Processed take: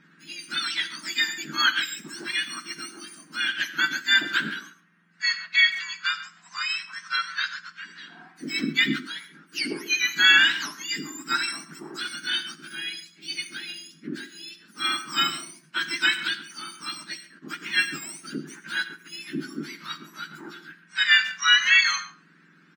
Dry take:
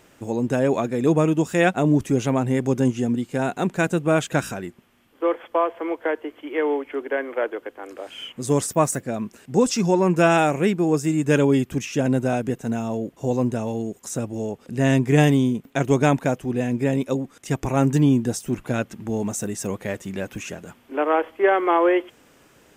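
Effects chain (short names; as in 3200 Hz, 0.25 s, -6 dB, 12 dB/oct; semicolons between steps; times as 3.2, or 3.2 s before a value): spectrum mirrored in octaves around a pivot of 1500 Hz; EQ curve 220 Hz 0 dB, 770 Hz -14 dB, 1600 Hz +14 dB, 12000 Hz -18 dB; speakerphone echo 0.14 s, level -15 dB; on a send at -11.5 dB: reverb, pre-delay 3 ms; on the sum: dynamic EQ 3400 Hz, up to +5 dB, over -32 dBFS, Q 1; gain -5 dB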